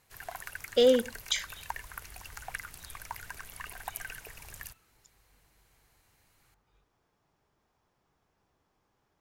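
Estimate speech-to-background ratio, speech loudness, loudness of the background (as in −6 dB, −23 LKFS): 16.0 dB, −27.0 LKFS, −43.0 LKFS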